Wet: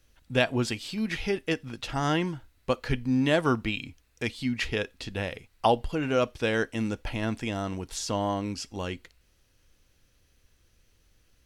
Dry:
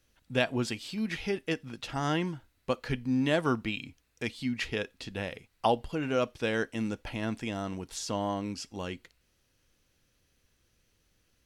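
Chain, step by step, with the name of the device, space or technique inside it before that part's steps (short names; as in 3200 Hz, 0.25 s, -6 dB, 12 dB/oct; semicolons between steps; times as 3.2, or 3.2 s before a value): low shelf boost with a cut just above (low shelf 78 Hz +8 dB; bell 180 Hz -2.5 dB 1.1 oct); gain +3.5 dB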